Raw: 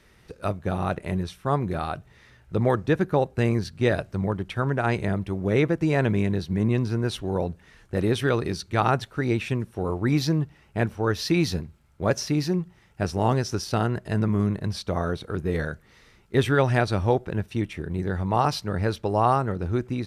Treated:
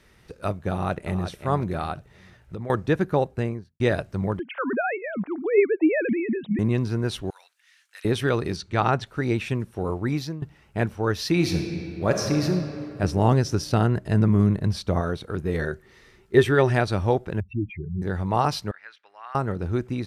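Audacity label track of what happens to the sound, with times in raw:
0.700000	1.270000	echo throw 0.36 s, feedback 35%, level -9.5 dB
1.930000	2.700000	compressor, threshold -30 dBFS
3.200000	3.800000	studio fade out
4.390000	6.590000	sine-wave speech
7.300000	8.050000	Bessel high-pass 2300 Hz, order 4
8.560000	9.070000	LPF 7000 Hz
9.920000	10.420000	fade out, to -15 dB
11.310000	12.460000	reverb throw, RT60 2.7 s, DRR 3 dB
13.030000	15.010000	low shelf 360 Hz +5.5 dB
15.610000	16.720000	small resonant body resonances 380/1800 Hz, height 15 dB -> 12 dB, ringing for 0.1 s
17.400000	18.020000	spectral contrast raised exponent 3.7
18.710000	19.350000	ladder band-pass 2100 Hz, resonance 40%

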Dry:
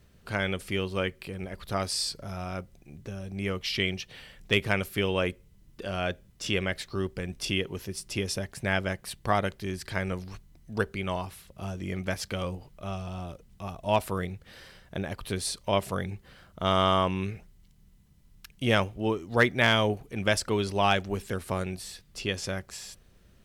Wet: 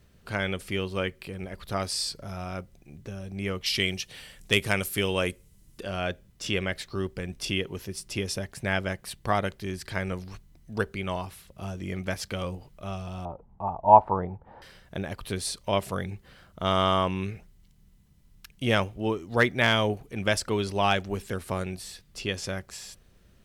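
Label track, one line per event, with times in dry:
3.660000	5.810000	bell 9600 Hz +11.5 dB 1.6 oct
13.250000	14.620000	synth low-pass 880 Hz, resonance Q 8

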